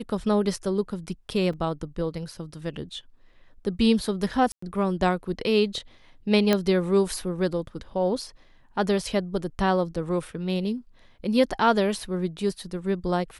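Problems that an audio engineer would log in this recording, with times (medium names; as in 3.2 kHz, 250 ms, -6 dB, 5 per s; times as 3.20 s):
1.53 s: dropout 4.1 ms
4.52–4.62 s: dropout 104 ms
6.53 s: pop -7 dBFS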